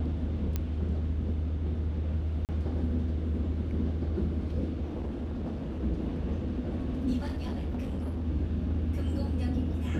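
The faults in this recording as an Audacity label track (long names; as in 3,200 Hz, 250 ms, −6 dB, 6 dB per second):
0.560000	0.560000	click −17 dBFS
2.450000	2.490000	drop-out 38 ms
4.850000	5.830000	clipping −30.5 dBFS
7.170000	8.270000	clipping −29.5 dBFS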